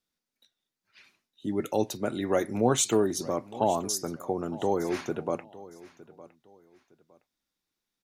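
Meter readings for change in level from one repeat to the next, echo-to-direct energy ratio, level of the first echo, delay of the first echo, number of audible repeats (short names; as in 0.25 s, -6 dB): -11.5 dB, -18.5 dB, -19.0 dB, 0.911 s, 2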